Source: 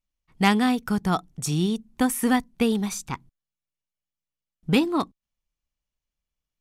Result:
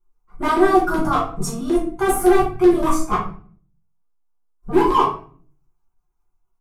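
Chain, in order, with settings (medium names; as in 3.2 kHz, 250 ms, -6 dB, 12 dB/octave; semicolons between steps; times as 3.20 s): formant-preserving pitch shift +7.5 st; in parallel at -2 dB: compressor with a negative ratio -28 dBFS, ratio -0.5; on the sum: resonant high shelf 2.3 kHz -10.5 dB, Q 3; static phaser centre 360 Hz, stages 8; LFO notch square 5.3 Hz 310–4400 Hz; overload inside the chain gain 18.5 dB; doubling 19 ms -10.5 dB; simulated room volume 44 m³, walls mixed, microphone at 1.2 m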